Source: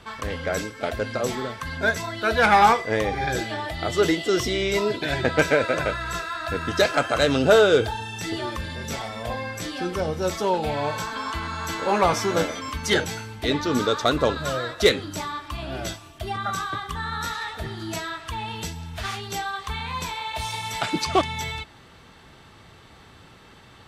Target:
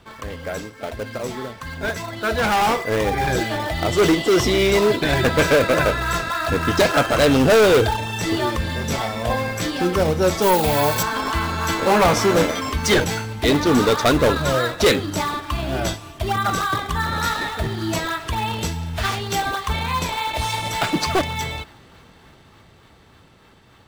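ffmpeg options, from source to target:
-filter_complex "[0:a]asplit=2[a][b];[b]acrusher=samples=17:mix=1:aa=0.000001:lfo=1:lforange=27.2:lforate=3.4,volume=-6dB[c];[a][c]amix=inputs=2:normalize=0,asettb=1/sr,asplit=3[d][e][f];[d]atrim=end=10.424[g];[e]atrim=start=10.42:end=11.03,asetpts=PTS-STARTPTS,afade=t=in:d=0.004:c=qsin,afade=t=out:st=0.606:d=0.004:c=qsin,aemphasis=mode=production:type=50fm[h];[f]atrim=start=11.026[i];[g][h]acrossfade=d=0.004:c1=hsin:c2=qsin[j];[j][i]acrossfade=d=0.004:c1=qsin:c2=hsin,asoftclip=type=hard:threshold=-16dB,dynaudnorm=f=270:g=21:m=10dB,volume=-5dB"

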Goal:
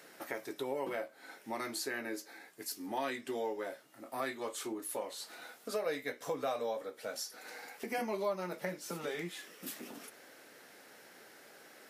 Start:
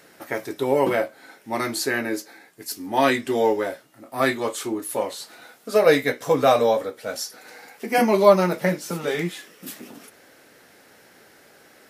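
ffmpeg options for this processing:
-af "highpass=100,lowshelf=f=140:g=-11.5,acompressor=threshold=-36dB:ratio=2.5,volume=-4dB"

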